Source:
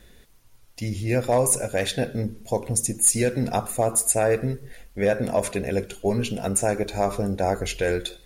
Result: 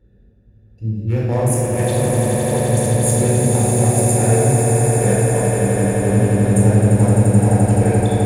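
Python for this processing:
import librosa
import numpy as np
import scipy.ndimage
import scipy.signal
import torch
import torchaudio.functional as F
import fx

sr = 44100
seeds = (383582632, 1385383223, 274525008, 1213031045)

y = fx.wiener(x, sr, points=41)
y = scipy.signal.sosfilt(scipy.signal.butter(2, 63.0, 'highpass', fs=sr, output='sos'), y)
y = fx.low_shelf(y, sr, hz=130.0, db=7.5)
y = fx.echo_swell(y, sr, ms=86, loudest=8, wet_db=-7.0)
y = fx.room_shoebox(y, sr, seeds[0], volume_m3=1600.0, walls='mixed', distance_m=4.3)
y = y * 10.0 ** (-6.5 / 20.0)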